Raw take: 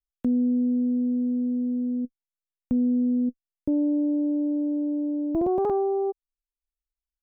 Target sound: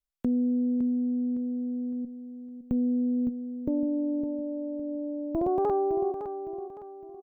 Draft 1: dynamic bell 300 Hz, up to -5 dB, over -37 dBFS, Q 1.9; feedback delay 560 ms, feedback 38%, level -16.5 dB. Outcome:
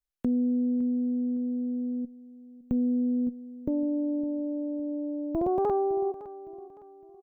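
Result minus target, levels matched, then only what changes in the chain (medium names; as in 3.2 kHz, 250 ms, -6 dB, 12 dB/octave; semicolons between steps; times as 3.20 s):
echo-to-direct -7 dB
change: feedback delay 560 ms, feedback 38%, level -9.5 dB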